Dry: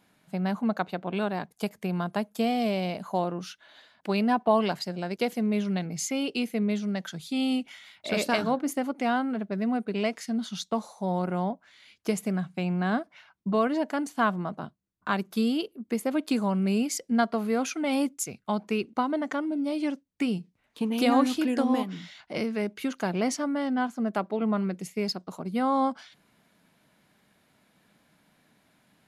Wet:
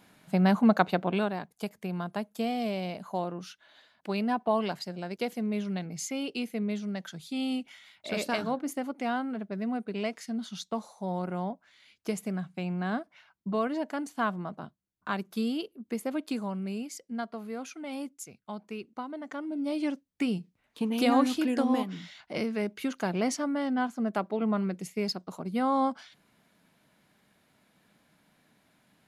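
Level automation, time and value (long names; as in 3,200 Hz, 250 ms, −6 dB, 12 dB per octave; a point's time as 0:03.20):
0:01.00 +5.5 dB
0:01.41 −4.5 dB
0:16.10 −4.5 dB
0:16.92 −11 dB
0:19.18 −11 dB
0:19.71 −1.5 dB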